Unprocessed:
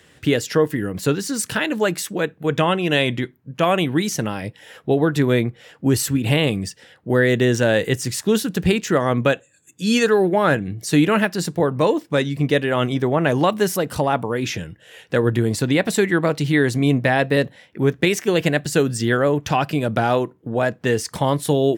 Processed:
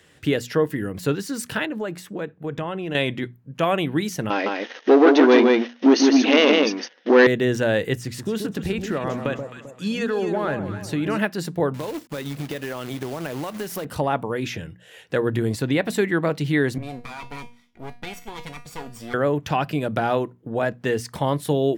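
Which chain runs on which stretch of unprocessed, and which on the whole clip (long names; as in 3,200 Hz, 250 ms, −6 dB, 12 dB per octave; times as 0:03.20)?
0:01.65–0:02.95: high-shelf EQ 2,300 Hz −10.5 dB + downward compressor 2.5 to 1, threshold −23 dBFS
0:04.30–0:07.27: single-tap delay 159 ms −4 dB + leveller curve on the samples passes 3 + linear-phase brick-wall band-pass 220–6,600 Hz
0:07.99–0:11.19: high-shelf EQ 5,600 Hz −6 dB + downward compressor, threshold −17 dBFS + delay that swaps between a low-pass and a high-pass 131 ms, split 1,000 Hz, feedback 60%, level −6 dB
0:11.74–0:13.85: low-shelf EQ 68 Hz −7.5 dB + downward compressor 16 to 1, threshold −22 dBFS + log-companded quantiser 4 bits
0:16.78–0:19.14: lower of the sound and its delayed copy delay 0.89 ms + tuned comb filter 240 Hz, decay 0.34 s, mix 80%
whole clip: dynamic equaliser 7,400 Hz, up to −6 dB, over −40 dBFS, Q 0.79; mains-hum notches 60/120/180/240 Hz; level −3 dB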